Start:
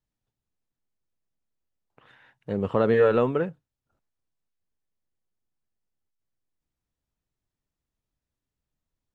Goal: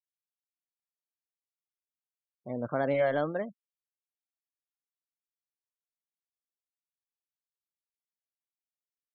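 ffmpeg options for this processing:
-af "asetrate=53981,aresample=44100,atempo=0.816958,afftfilt=real='re*gte(hypot(re,im),0.0158)':imag='im*gte(hypot(re,im),0.0158)':win_size=1024:overlap=0.75,volume=-7.5dB"

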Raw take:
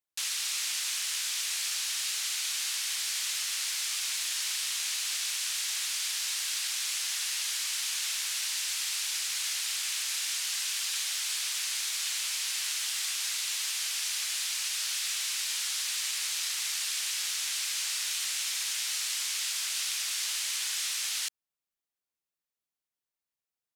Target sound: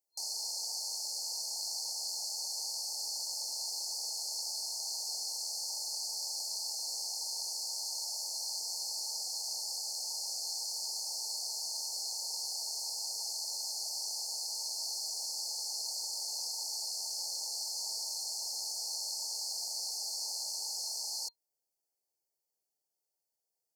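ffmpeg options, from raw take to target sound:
-filter_complex "[0:a]acrossover=split=4200[a][b];[b]acompressor=threshold=-46dB:ratio=4:attack=1:release=60[c];[a][c]amix=inputs=2:normalize=0,lowshelf=f=320:t=q:w=1.5:g=-7,afftfilt=real='re*(1-between(b*sr/4096,940,4200))':imag='im*(1-between(b*sr/4096,940,4200))':win_size=4096:overlap=0.75,volume=4.5dB"

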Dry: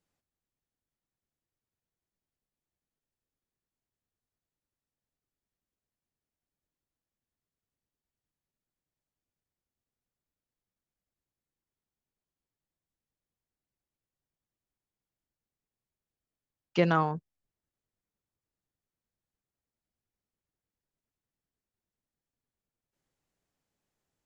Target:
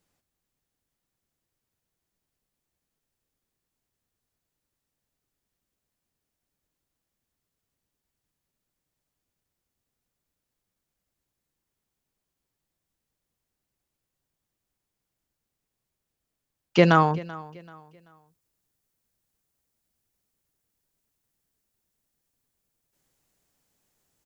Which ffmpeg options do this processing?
-af "asetnsamples=n=441:p=0,asendcmd='16.8 highshelf g 10.5',highshelf=f=6k:g=3,aecho=1:1:385|770|1155:0.1|0.033|0.0109,volume=7.5dB"

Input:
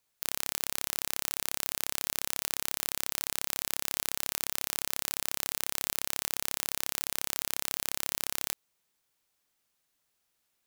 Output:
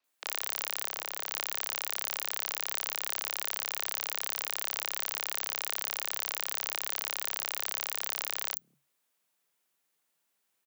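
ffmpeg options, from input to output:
-filter_complex "[0:a]asettb=1/sr,asplit=3[a][b][c];[a]atrim=end=0.844[d];[b]atrim=start=0.84:end=1.28,asetpts=PTS-STARTPTS,afade=t=in:d=0.004:c=qsin,afade=t=out:st=0.436:d=0.004:c=qsin,tiltshelf=f=970:g=3.5[e];[c]atrim=start=1.276[f];[d][e]acrossfade=d=0.004:c1=hsin:c2=qsin[g];[g][f]acrossfade=d=0.004:c1=qsin:c2=hsin,acrossover=split=280|1900[h][i][j];[h]alimiter=level_in=29dB:limit=-24dB:level=0:latency=1,volume=-29dB[k];[k][i][j]amix=inputs=3:normalize=0,afreqshift=140,acrossover=split=220|5000[l][m][n];[n]adelay=40[o];[l]adelay=200[p];[p][m][o]amix=inputs=3:normalize=0"

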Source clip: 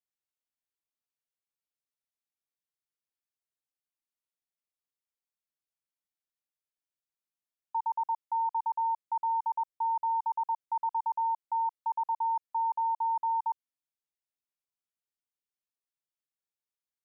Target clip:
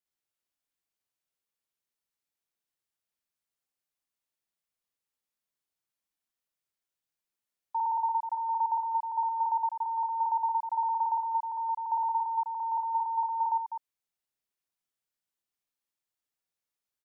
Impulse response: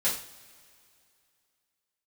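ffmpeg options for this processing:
-af "aecho=1:1:55.39|256.6:1|0.501"

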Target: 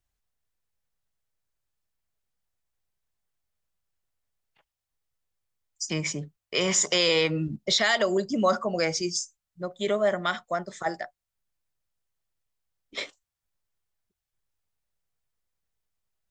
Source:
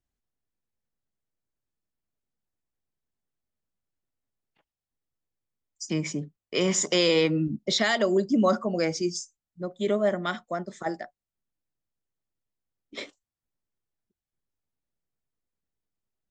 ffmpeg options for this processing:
-filter_complex "[0:a]equalizer=f=260:t=o:w=1.5:g=-11,asplit=2[a][b];[b]alimiter=limit=-21dB:level=0:latency=1:release=65,volume=0dB[c];[a][c]amix=inputs=2:normalize=0,volume=-1dB"

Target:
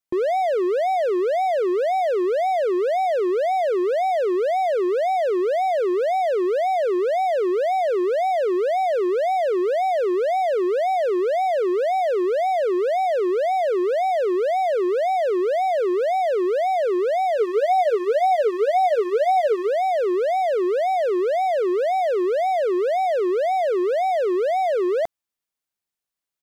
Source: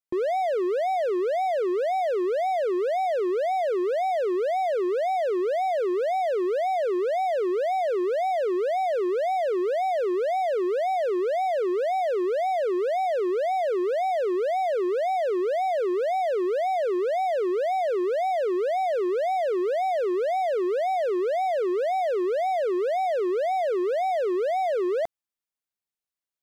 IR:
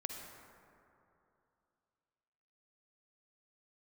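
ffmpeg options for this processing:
-filter_complex "[0:a]asplit=3[a][b][c];[a]afade=t=out:st=17.36:d=0.02[d];[b]aecho=1:1:6.8:0.63,afade=t=in:st=17.36:d=0.02,afade=t=out:st=19.66:d=0.02[e];[c]afade=t=in:st=19.66:d=0.02[f];[d][e][f]amix=inputs=3:normalize=0,volume=4dB"

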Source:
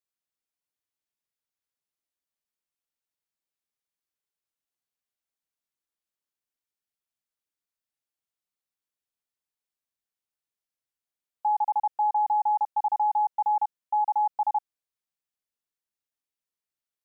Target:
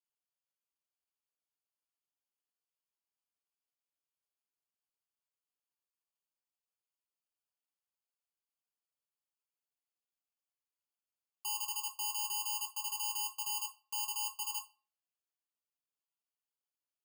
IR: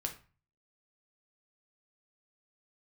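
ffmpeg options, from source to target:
-filter_complex "[0:a]acrusher=samples=23:mix=1:aa=0.000001,aderivative,alimiter=limit=-22.5dB:level=0:latency=1:release=34,asplit=2[a][b];[1:a]atrim=start_sample=2205,adelay=7[c];[b][c]afir=irnorm=-1:irlink=0,volume=0dB[d];[a][d]amix=inputs=2:normalize=0"

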